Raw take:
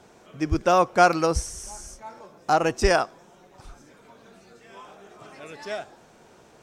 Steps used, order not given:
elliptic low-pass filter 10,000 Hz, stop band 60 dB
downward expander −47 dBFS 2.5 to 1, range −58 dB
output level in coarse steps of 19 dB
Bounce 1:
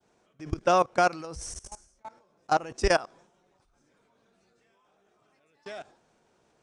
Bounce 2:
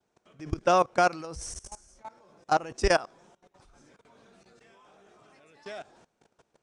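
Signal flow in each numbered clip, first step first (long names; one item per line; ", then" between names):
output level in coarse steps, then downward expander, then elliptic low-pass filter
downward expander, then output level in coarse steps, then elliptic low-pass filter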